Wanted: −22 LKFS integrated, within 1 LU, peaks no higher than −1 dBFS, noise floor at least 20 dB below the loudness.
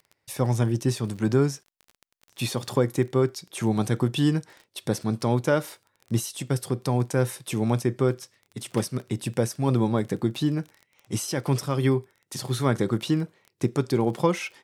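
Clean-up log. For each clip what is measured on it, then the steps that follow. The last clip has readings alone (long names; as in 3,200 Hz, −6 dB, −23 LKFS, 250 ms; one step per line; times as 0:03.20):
crackle rate 23 per second; integrated loudness −26.0 LKFS; sample peak −7.5 dBFS; target loudness −22.0 LKFS
→ click removal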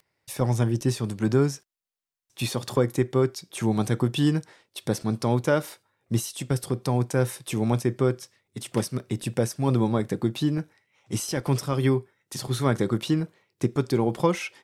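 crackle rate 0.34 per second; integrated loudness −26.0 LKFS; sample peak −7.5 dBFS; target loudness −22.0 LKFS
→ level +4 dB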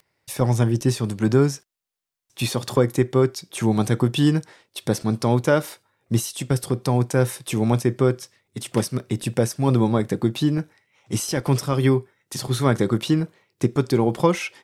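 integrated loudness −22.0 LKFS; sample peak −3.5 dBFS; background noise floor −75 dBFS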